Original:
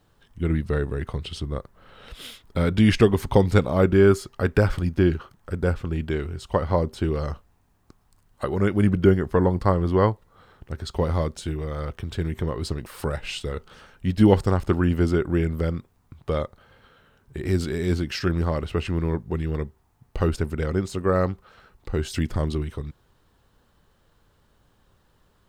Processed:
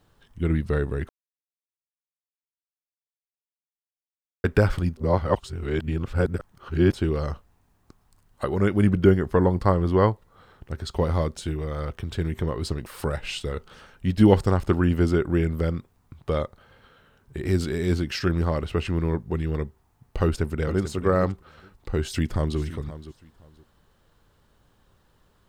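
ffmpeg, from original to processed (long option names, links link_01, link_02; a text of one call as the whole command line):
ffmpeg -i in.wav -filter_complex "[0:a]asplit=2[link_01][link_02];[link_02]afade=type=in:start_time=20.23:duration=0.01,afade=type=out:start_time=20.87:duration=0.01,aecho=0:1:440|880:0.316228|0.0316228[link_03];[link_01][link_03]amix=inputs=2:normalize=0,asplit=2[link_04][link_05];[link_05]afade=type=in:start_time=22.02:duration=0.01,afade=type=out:start_time=22.59:duration=0.01,aecho=0:1:520|1040:0.188365|0.037673[link_06];[link_04][link_06]amix=inputs=2:normalize=0,asplit=5[link_07][link_08][link_09][link_10][link_11];[link_07]atrim=end=1.09,asetpts=PTS-STARTPTS,afade=type=out:start_time=1.086:duration=0.004:curve=hsin[link_12];[link_08]atrim=start=1.09:end=4.44,asetpts=PTS-STARTPTS,volume=0[link_13];[link_09]atrim=start=4.44:end=4.972,asetpts=PTS-STARTPTS,afade=type=in:duration=0.004:curve=hsin[link_14];[link_10]atrim=start=4.968:end=6.922,asetpts=PTS-STARTPTS,areverse[link_15];[link_11]atrim=start=6.918[link_16];[link_12][link_13][link_14]concat=n=3:v=0:a=1[link_17];[link_17][link_15]acrossfade=duration=0.004:curve1=hsin:curve2=hsin[link_18];[link_18][link_16]acrossfade=duration=0.004:curve1=hsin:curve2=hsin" out.wav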